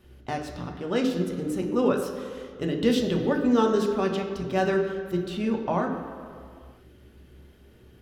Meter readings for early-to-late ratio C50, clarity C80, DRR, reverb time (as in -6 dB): 6.0 dB, 7.5 dB, 1.5 dB, 2.2 s